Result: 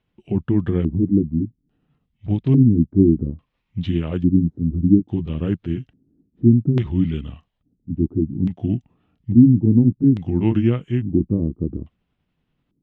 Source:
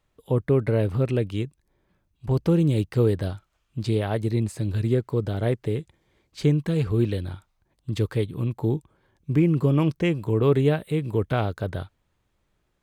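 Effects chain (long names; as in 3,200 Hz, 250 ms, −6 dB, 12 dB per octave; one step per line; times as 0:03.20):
pitch shift by two crossfaded delay taps −4 semitones
parametric band 180 Hz +14 dB 1.4 octaves
auto-filter low-pass square 0.59 Hz 310–3,300 Hz
level −4 dB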